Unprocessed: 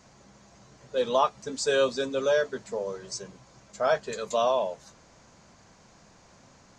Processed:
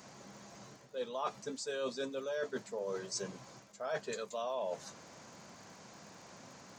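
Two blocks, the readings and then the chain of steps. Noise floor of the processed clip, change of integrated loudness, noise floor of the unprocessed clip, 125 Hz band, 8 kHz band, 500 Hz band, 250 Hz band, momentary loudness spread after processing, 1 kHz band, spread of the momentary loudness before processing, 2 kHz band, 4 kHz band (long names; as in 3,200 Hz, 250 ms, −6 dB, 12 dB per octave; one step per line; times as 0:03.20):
−58 dBFS, −12.0 dB, −57 dBFS, −7.0 dB, −6.5 dB, −12.0 dB, −8.0 dB, 15 LU, −13.0 dB, 12 LU, −11.5 dB, −10.5 dB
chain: high-pass filter 140 Hz 12 dB per octave
reversed playback
downward compressor 8 to 1, threshold −38 dBFS, peak gain reduction 19 dB
reversed playback
surface crackle 89 per second −56 dBFS
level +2.5 dB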